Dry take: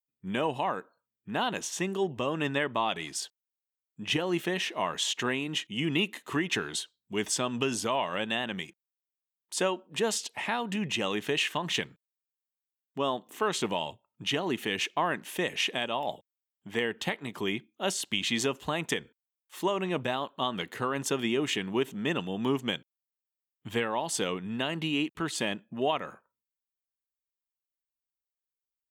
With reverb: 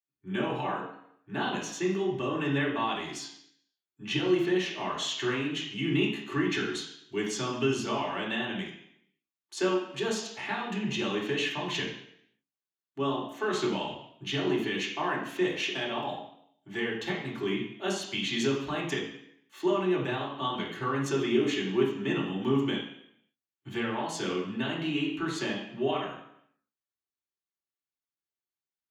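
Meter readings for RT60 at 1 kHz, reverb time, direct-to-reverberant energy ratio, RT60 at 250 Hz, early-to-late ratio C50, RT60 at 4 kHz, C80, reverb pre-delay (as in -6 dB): 0.70 s, 0.70 s, -4.0 dB, 0.80 s, 5.0 dB, 0.70 s, 8.0 dB, 3 ms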